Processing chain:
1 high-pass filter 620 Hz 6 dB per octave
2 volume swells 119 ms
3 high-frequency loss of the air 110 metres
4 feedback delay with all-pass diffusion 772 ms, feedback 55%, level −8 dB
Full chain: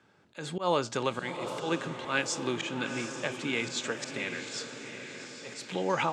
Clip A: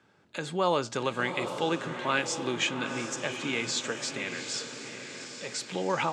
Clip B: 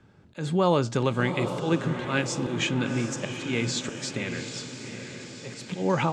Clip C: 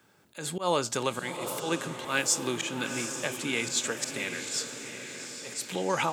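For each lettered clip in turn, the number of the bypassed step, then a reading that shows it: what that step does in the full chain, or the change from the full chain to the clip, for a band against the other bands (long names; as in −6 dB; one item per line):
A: 2, 8 kHz band +2.0 dB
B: 1, 125 Hz band +10.0 dB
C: 3, 8 kHz band +9.0 dB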